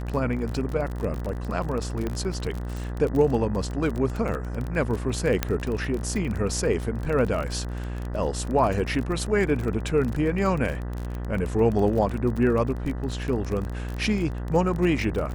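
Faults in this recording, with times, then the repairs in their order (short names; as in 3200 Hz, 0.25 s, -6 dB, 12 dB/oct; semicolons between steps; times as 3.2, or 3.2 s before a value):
buzz 60 Hz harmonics 33 -31 dBFS
crackle 31/s -28 dBFS
2.07 pop -16 dBFS
5.43 pop -7 dBFS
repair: de-click; de-hum 60 Hz, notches 33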